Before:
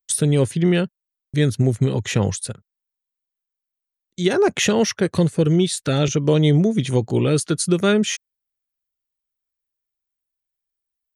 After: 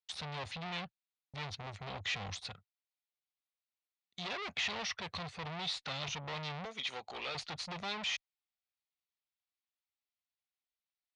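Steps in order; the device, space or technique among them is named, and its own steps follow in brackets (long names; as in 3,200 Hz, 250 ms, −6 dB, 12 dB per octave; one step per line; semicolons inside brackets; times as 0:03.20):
0:06.65–0:07.35: high-pass filter 570 Hz 12 dB per octave
scooped metal amplifier (tube saturation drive 30 dB, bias 0.35; loudspeaker in its box 93–4,100 Hz, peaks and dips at 120 Hz −9 dB, 270 Hz +8 dB, 740 Hz +6 dB, 1,600 Hz −6 dB, 3,000 Hz −3 dB; guitar amp tone stack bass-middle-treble 10-0-10)
level +5 dB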